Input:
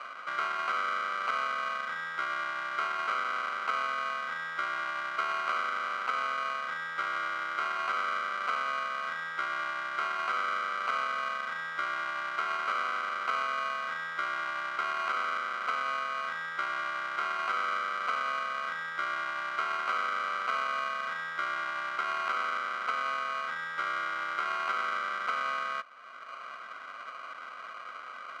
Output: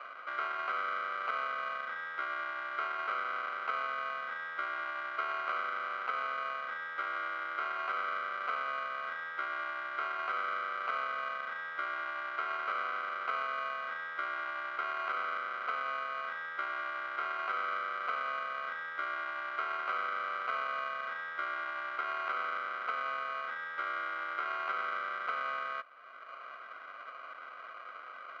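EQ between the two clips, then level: BPF 340–4700 Hz; bell 980 Hz -4 dB 0.63 oct; high shelf 2800 Hz -11 dB; 0.0 dB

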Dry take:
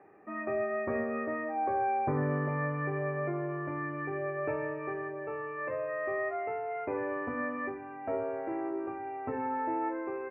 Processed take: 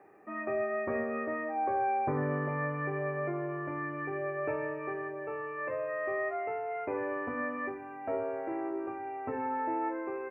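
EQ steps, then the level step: tone controls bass -3 dB, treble +7 dB; 0.0 dB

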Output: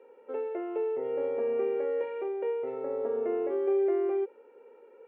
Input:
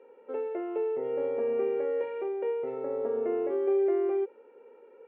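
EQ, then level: HPF 100 Hz; bell 180 Hz -3 dB 1.3 oct; 0.0 dB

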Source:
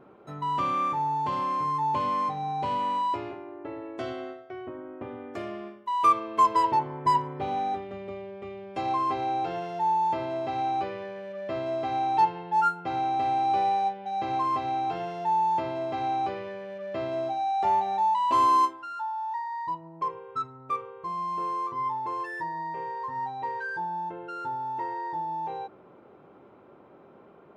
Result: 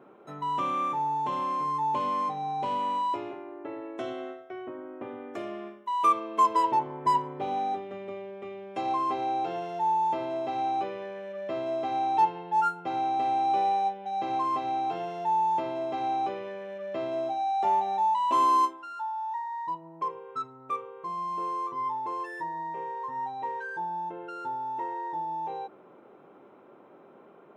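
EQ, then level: HPF 190 Hz 12 dB/oct; notch 4600 Hz, Q 5.2; dynamic EQ 1700 Hz, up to -4 dB, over -44 dBFS, Q 1.3; 0.0 dB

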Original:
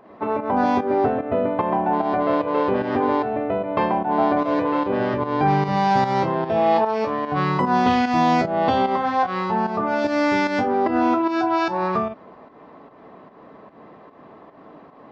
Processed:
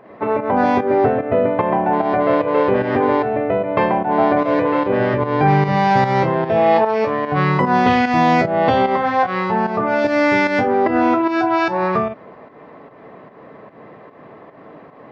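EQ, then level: graphic EQ 125/500/2000 Hz +8/+6/+8 dB; 0.0 dB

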